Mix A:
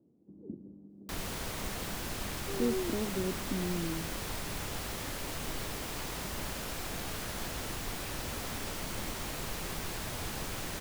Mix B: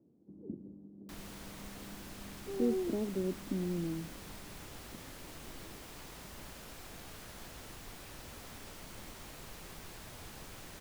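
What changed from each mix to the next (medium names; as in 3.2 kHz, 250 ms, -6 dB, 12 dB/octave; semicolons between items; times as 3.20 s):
background -11.0 dB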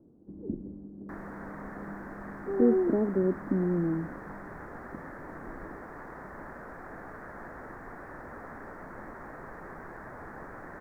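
speech: remove high-pass 170 Hz; master: add FFT filter 100 Hz 0 dB, 270 Hz +8 dB, 1.8 kHz +11 dB, 2.9 kHz -27 dB, 5.5 kHz -20 dB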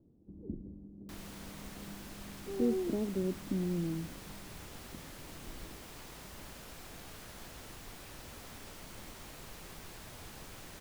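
master: remove FFT filter 100 Hz 0 dB, 270 Hz +8 dB, 1.8 kHz +11 dB, 2.9 kHz -27 dB, 5.5 kHz -20 dB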